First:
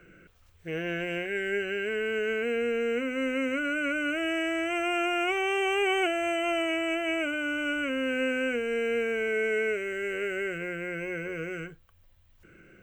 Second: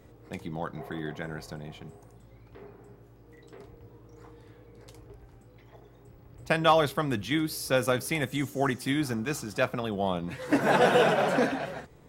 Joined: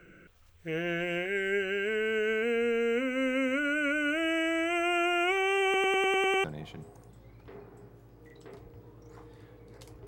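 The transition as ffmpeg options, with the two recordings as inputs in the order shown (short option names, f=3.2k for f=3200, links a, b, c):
-filter_complex "[0:a]apad=whole_dur=10.07,atrim=end=10.07,asplit=8[a][b][c][d][e][f][g][h];[a]atrim=end=5.742[i];[b]atrim=start=5.638:end=5.742[j];[c]atrim=start=5.638:end=5.742[k];[d]atrim=start=5.638:end=5.742[l];[e]atrim=start=5.638:end=5.742[m];[f]atrim=start=5.638:end=5.742[n];[g]atrim=start=5.638:end=5.742[o];[h]atrim=start=5.638:end=5.742[p];[1:a]atrim=start=1.508:end=5.14[q];[i][j]acrossfade=d=0.004:c1=hsin:c2=hsin[r];[r][k]acrossfade=d=0.004:c1=hsin:c2=hsin[s];[s][l]acrossfade=d=0.004:c1=hsin:c2=hsin[t];[t][m]acrossfade=d=0.004:c1=hsin:c2=hsin[u];[u][n]acrossfade=d=0.004:c1=hsin:c2=hsin[v];[v][o]acrossfade=d=0.004:c1=hsin:c2=hsin[w];[w][p]acrossfade=d=0.004:c1=hsin:c2=hsin[x];[x][q]acrossfade=d=0.004:c1=hsin:c2=hsin"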